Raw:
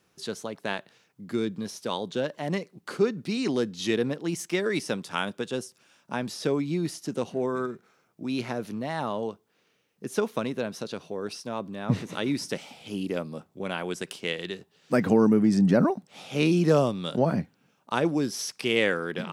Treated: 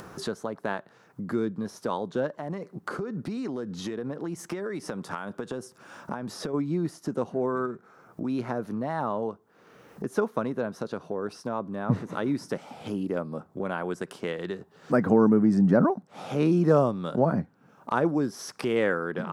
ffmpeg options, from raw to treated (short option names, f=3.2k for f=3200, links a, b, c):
-filter_complex "[0:a]asplit=3[a][b][c];[a]afade=t=out:st=2.37:d=0.02[d];[b]acompressor=threshold=-33dB:ratio=6:attack=3.2:release=140:knee=1:detection=peak,afade=t=in:st=2.37:d=0.02,afade=t=out:st=6.53:d=0.02[e];[c]afade=t=in:st=6.53:d=0.02[f];[d][e][f]amix=inputs=3:normalize=0,highshelf=f=1.9k:t=q:w=1.5:g=-10,acompressor=mode=upward:threshold=-26dB:ratio=2.5"